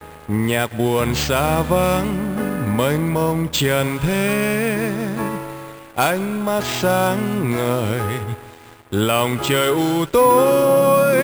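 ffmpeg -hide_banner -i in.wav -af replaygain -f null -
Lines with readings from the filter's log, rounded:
track_gain = -0.6 dB
track_peak = 0.460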